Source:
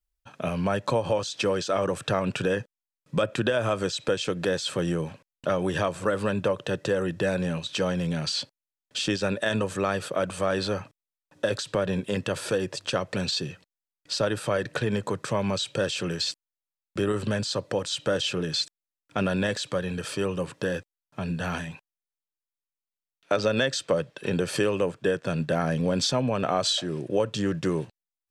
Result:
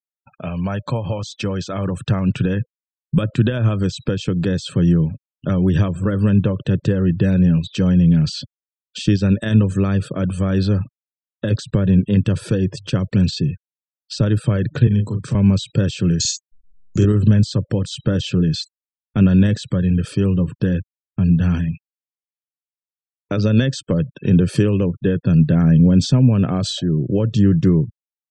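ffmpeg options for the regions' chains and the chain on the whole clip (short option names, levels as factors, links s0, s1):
-filter_complex "[0:a]asettb=1/sr,asplit=3[s0][s1][s2];[s0]atrim=end=14.874[s3];[s1]atrim=start=14.87:end=15.35,asetpts=PTS-STARTPTS,afade=t=in:d=0.004:c=qsin,afade=t=out:st=0.476:d=0.004:c=qsin,lowshelf=f=150:g=-5.5,acrossover=split=150|3000[s4][s5][s6];[s5]acompressor=threshold=0.02:ratio=3:attack=3.2:release=140:knee=2.83:detection=peak[s7];[s4][s7][s6]amix=inputs=3:normalize=0,asplit=2[s8][s9];[s9]adelay=38,volume=0.501[s10];[s8][s10]amix=inputs=2:normalize=0,atrim=end_sample=21168[s11];[s2]atrim=start=15.346[s12];[s3][s11]acrossfade=d=0.004:c1=hsin:c2=qsin[s13];[s13][s12]acrossfade=d=0.004:c1=qsin:c2=hsin,asettb=1/sr,asplit=3[s14][s15][s16];[s14]atrim=end=16.204[s17];[s15]atrim=start=16.2:end=17.05,asetpts=PTS-STARTPTS,afade=t=in:d=0.004:c=qsin,afade=t=out:st=0.846:d=0.004:c=qsin,acompressor=mode=upward:threshold=0.0282:ratio=2.5:attack=3.2:release=140:knee=2.83:detection=peak,lowpass=f=6700:t=q:w=13,asplit=2[s18][s19];[s19]adelay=48,volume=0.562[s20];[s18][s20]amix=inputs=2:normalize=0,atrim=end_sample=37485[s21];[s16]atrim=start=17.046[s22];[s17][s21]acrossfade=d=0.004:c1=hsin:c2=qsin[s23];[s23][s22]acrossfade=d=0.004:c1=qsin:c2=hsin,agate=range=0.158:threshold=0.00316:ratio=16:detection=peak,afftfilt=real='re*gte(hypot(re,im),0.0112)':imag='im*gte(hypot(re,im),0.0112)':win_size=1024:overlap=0.75,asubboost=boost=11:cutoff=210"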